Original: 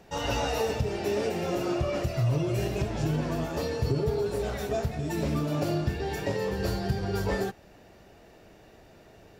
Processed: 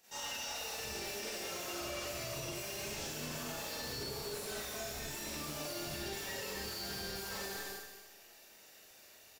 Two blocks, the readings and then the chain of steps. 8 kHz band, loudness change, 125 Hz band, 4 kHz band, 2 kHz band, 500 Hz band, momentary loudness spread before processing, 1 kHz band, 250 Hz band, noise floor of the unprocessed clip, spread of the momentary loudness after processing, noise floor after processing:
+3.0 dB, -10.5 dB, -21.0 dB, -1.0 dB, -5.0 dB, -15.0 dB, 3 LU, -11.0 dB, -16.5 dB, -54 dBFS, 16 LU, -59 dBFS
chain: pre-emphasis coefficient 0.97; in parallel at -9 dB: Schmitt trigger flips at -45 dBFS; on the sum: doubler 46 ms -11 dB; on a send: feedback echo 0.227 s, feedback 27%, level -11 dB; on the sum: Schroeder reverb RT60 0.88 s, combs from 29 ms, DRR -10 dB; limiter -29.5 dBFS, peak gain reduction 11 dB; slew limiter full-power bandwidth 64 Hz; gain -1.5 dB

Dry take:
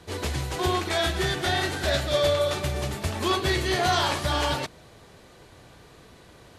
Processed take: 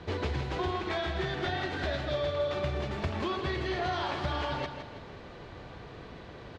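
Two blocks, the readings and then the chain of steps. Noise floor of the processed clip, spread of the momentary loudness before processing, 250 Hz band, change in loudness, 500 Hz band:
-47 dBFS, 7 LU, -5.0 dB, -7.5 dB, -6.0 dB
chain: compressor 6:1, threshold -34 dBFS, peak gain reduction 14.5 dB; air absorption 210 m; feedback echo 0.162 s, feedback 44%, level -8.5 dB; gain +5 dB

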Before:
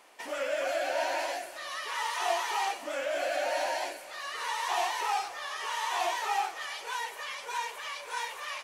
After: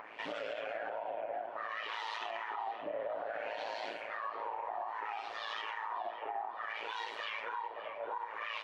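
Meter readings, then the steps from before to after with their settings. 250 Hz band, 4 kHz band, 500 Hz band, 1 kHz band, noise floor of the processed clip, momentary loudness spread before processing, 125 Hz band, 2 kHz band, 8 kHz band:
-5.5 dB, -9.5 dB, -7.0 dB, -7.0 dB, -46 dBFS, 8 LU, n/a, -7.0 dB, under -25 dB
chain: AM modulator 110 Hz, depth 65%; high shelf 2400 Hz -11.5 dB; LFO low-pass sine 0.6 Hz 630–4000 Hz; compressor 10:1, threshold -39 dBFS, peak gain reduction 16 dB; HPF 48 Hz; upward compressor, threshold -49 dBFS; high shelf 5000 Hz +6.5 dB; band-limited delay 0.571 s, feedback 41%, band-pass 1500 Hz, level -12 dB; limiter -35 dBFS, peak gain reduction 6.5 dB; Doppler distortion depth 0.11 ms; gain +5.5 dB

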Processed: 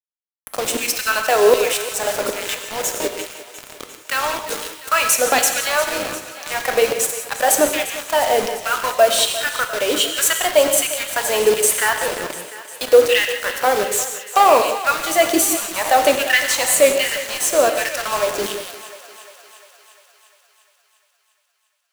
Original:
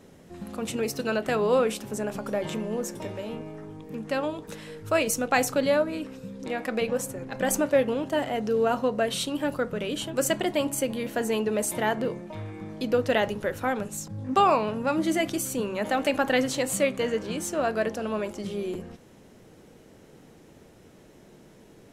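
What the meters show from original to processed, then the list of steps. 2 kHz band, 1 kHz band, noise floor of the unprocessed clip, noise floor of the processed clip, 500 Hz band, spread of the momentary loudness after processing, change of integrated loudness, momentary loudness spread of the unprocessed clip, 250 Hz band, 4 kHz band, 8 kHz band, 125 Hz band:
+11.5 dB, +10.0 dB, -53 dBFS, -66 dBFS, +8.0 dB, 13 LU, +9.5 dB, 12 LU, -1.5 dB, +14.0 dB, +15.0 dB, n/a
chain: high shelf 4000 Hz +9 dB; in parallel at -2.5 dB: compressor, threshold -34 dBFS, peak gain reduction 18 dB; on the sum: hard clip -15 dBFS, distortion -18 dB; LFO high-pass saw down 1.3 Hz 350–3100 Hz; bit-crush 5-bit; on a send: thinning echo 0.35 s, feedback 66%, high-pass 420 Hz, level -14.5 dB; on the sum: non-linear reverb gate 0.21 s flat, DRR 5.5 dB; gain +4.5 dB

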